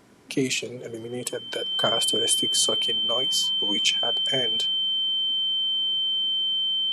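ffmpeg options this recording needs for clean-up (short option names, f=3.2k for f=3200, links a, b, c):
-af "bandreject=f=3.1k:w=30"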